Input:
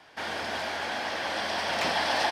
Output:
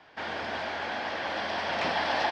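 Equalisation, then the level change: distance through air 150 m; 0.0 dB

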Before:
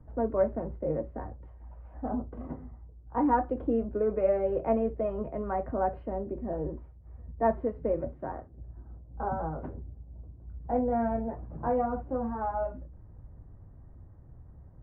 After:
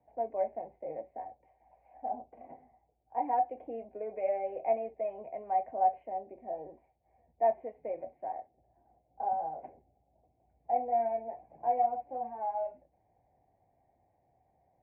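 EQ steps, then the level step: two resonant band-passes 1.3 kHz, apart 1.6 oct; distance through air 160 m; +6.0 dB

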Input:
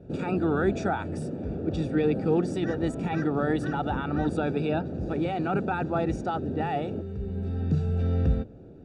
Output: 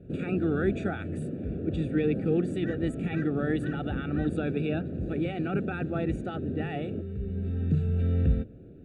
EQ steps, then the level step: static phaser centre 2.3 kHz, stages 4; 0.0 dB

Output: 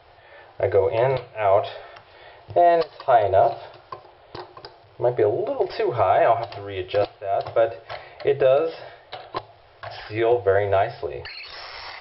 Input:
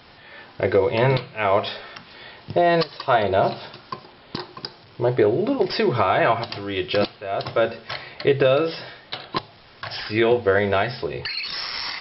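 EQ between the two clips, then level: FFT filter 100 Hz 0 dB, 230 Hz -24 dB, 350 Hz -4 dB, 700 Hz +4 dB, 1 kHz -4 dB, 3.1 kHz -8 dB, 7.8 kHz -15 dB; 0.0 dB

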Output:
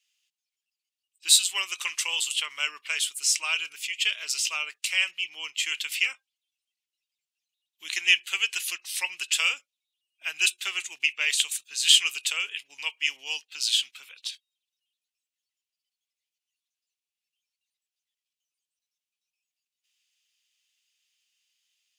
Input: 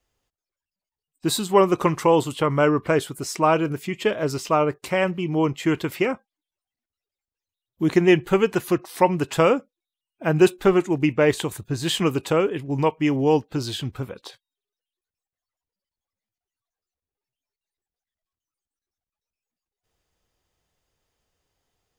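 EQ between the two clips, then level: peaking EQ 6.7 kHz +8.5 dB 2.1 oct; dynamic bell 8.8 kHz, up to +6 dB, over -42 dBFS, Q 0.8; resonant high-pass 2.7 kHz, resonance Q 3.3; -4.5 dB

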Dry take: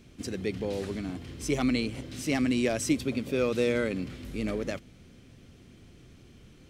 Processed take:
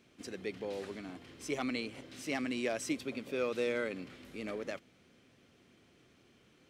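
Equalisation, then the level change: high-pass 630 Hz 6 dB/octave; treble shelf 3.3 kHz -8 dB; -2.0 dB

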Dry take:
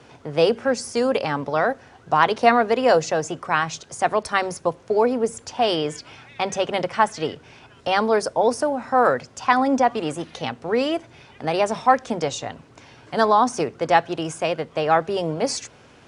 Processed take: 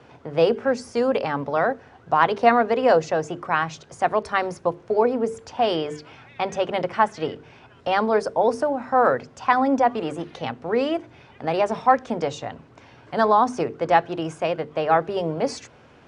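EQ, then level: treble shelf 3.4 kHz -8 dB; treble shelf 8.7 kHz -9.5 dB; hum notches 50/100/150/200/250/300/350/400/450 Hz; 0.0 dB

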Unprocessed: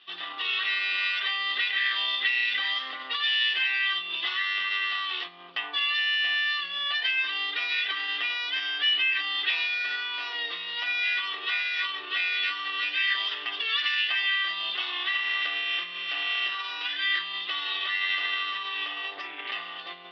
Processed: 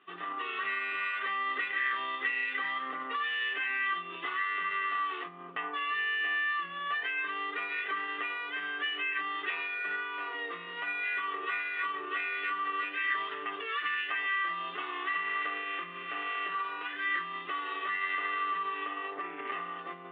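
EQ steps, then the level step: cabinet simulation 160–2200 Hz, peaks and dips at 170 Hz +9 dB, 270 Hz +7 dB, 420 Hz +10 dB, 1.2 kHz +7 dB; bass shelf 350 Hz +4.5 dB; -3.0 dB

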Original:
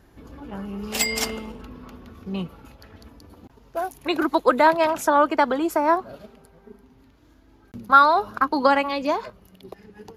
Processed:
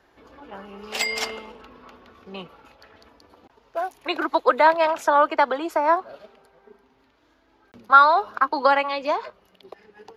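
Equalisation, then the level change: three-band isolator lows -16 dB, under 390 Hz, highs -13 dB, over 5.5 kHz; +1.0 dB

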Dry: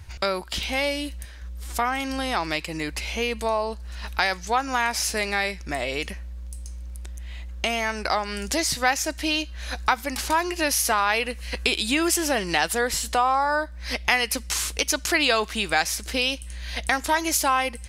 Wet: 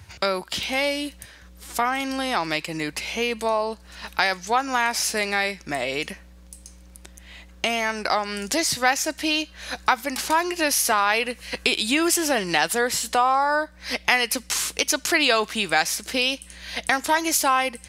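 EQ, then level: high-pass 91 Hz 24 dB/octave; +1.5 dB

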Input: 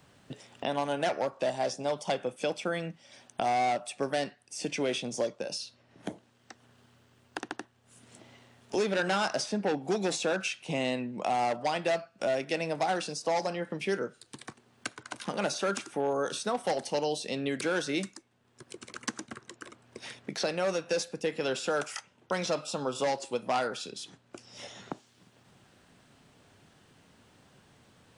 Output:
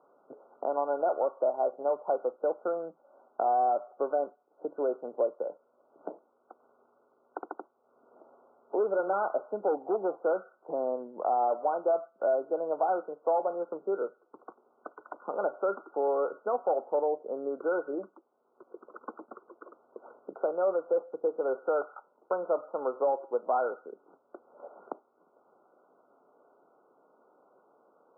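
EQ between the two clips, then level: high-pass 440 Hz 24 dB/octave; brick-wall FIR low-pass 1.5 kHz; tilt EQ -4.5 dB/octave; 0.0 dB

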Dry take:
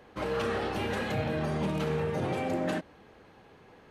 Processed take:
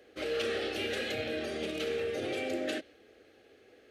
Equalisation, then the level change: high-pass 190 Hz 6 dB/octave; dynamic bell 3.3 kHz, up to +6 dB, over -52 dBFS, Q 0.83; static phaser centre 400 Hz, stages 4; 0.0 dB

